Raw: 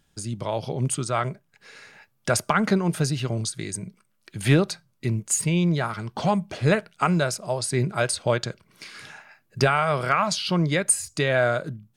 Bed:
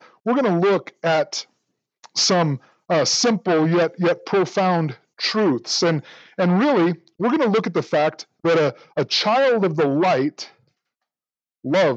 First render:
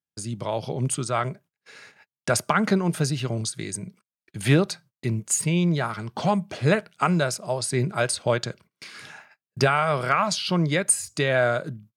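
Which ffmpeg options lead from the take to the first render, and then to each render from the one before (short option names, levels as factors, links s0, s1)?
-af "agate=range=0.0316:threshold=0.00398:ratio=16:detection=peak,highpass=85"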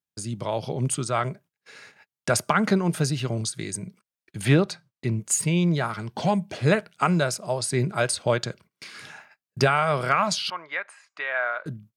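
-filter_complex "[0:a]asettb=1/sr,asplit=3[s0][s1][s2];[s0]atrim=end=4.454[s3];[s1]atrim=start=4.45:end=5.2,asetpts=PTS-STARTPTS,afade=t=in:d=0.004:c=qsin,afade=t=out:st=0.746:d=0.004:c=qsin,highshelf=f=8000:g=-11[s4];[s2]atrim=start=5.196[s5];[s3][s4]acrossfade=d=0.004:c1=hsin:c2=qsin[s6];[s6][s5]acrossfade=d=0.004:c1=qsin:c2=hsin,asettb=1/sr,asplit=3[s7][s8][s9];[s7]atrim=end=6.064[s10];[s8]atrim=start=6.06:end=6.54,asetpts=PTS-STARTPTS,afade=t=in:d=0.004:c=qsin,afade=t=out:st=0.476:d=0.004:c=qsin,equalizer=f=1200:w=5.5:g=-12.5[s11];[s9]atrim=start=6.536[s12];[s10][s11]acrossfade=d=0.004:c1=hsin:c2=qsin[s13];[s13][s12]acrossfade=d=0.004:c1=qsin:c2=hsin,asettb=1/sr,asplit=3[s14][s15][s16];[s14]atrim=end=10.504[s17];[s15]atrim=start=10.5:end=11.66,asetpts=PTS-STARTPTS,afade=t=in:d=0.004:c=qsin,afade=t=out:st=1.156:d=0.004:c=qsin,asuperpass=centerf=1400:order=4:qfactor=0.94[s18];[s16]atrim=start=11.656[s19];[s17][s18]acrossfade=d=0.004:c1=hsin:c2=qsin[s20];[s20][s19]acrossfade=d=0.004:c1=qsin:c2=hsin"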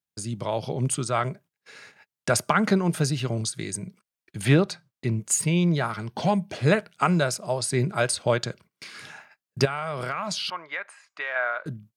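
-filter_complex "[0:a]asettb=1/sr,asplit=3[s0][s1][s2];[s0]atrim=end=5.434[s3];[s1]atrim=start=5.43:end=6.51,asetpts=PTS-STARTPTS,afade=t=in:d=0.004:c=qsin,afade=t=out:st=1.076:d=0.004:c=qsin,bandreject=f=7400:w=6.6[s4];[s2]atrim=start=6.506[s5];[s3][s4]acrossfade=d=0.004:c1=hsin:c2=qsin[s6];[s6][s5]acrossfade=d=0.004:c1=qsin:c2=hsin,asettb=1/sr,asplit=3[s7][s8][s9];[s7]atrim=end=9.654[s10];[s8]atrim=start=9.65:end=11.36,asetpts=PTS-STARTPTS,afade=t=in:d=0.004:c=qsin,afade=t=out:st=1.706:d=0.004:c=qsin,acompressor=threshold=0.0562:ratio=6:attack=3.2:release=140:knee=1:detection=peak[s11];[s9]atrim=start=11.356[s12];[s10][s11]acrossfade=d=0.004:c1=hsin:c2=qsin[s13];[s13][s12]acrossfade=d=0.004:c1=qsin:c2=hsin"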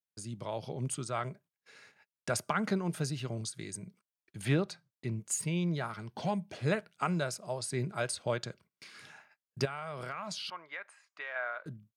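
-af "volume=0.316"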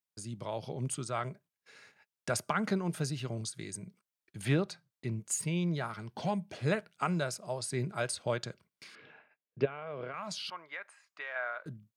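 -filter_complex "[0:a]asettb=1/sr,asplit=3[s0][s1][s2];[s0]atrim=end=8.954[s3];[s1]atrim=start=8.95:end=10.14,asetpts=PTS-STARTPTS,afade=t=in:d=0.004:c=qsin,afade=t=out:st=1.186:d=0.004:c=qsin,highpass=120,equalizer=f=170:t=q:w=4:g=-4,equalizer=f=300:t=q:w=4:g=4,equalizer=f=470:t=q:w=4:g=8,equalizer=f=850:t=q:w=4:g=-5,equalizer=f=1300:t=q:w=4:g=-5,equalizer=f=1900:t=q:w=4:g=-5,lowpass=f=2900:w=0.5412,lowpass=f=2900:w=1.3066[s4];[s2]atrim=start=10.136[s5];[s3][s4]acrossfade=d=0.004:c1=hsin:c2=qsin[s6];[s6][s5]acrossfade=d=0.004:c1=qsin:c2=hsin"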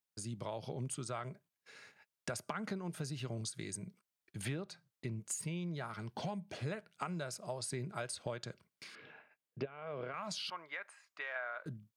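-af "acompressor=threshold=0.0141:ratio=6"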